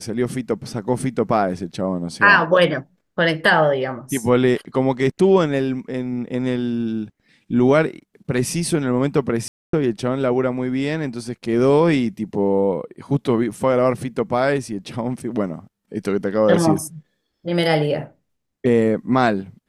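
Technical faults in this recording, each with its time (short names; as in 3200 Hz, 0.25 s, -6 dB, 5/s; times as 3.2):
9.48–9.73 gap 0.253 s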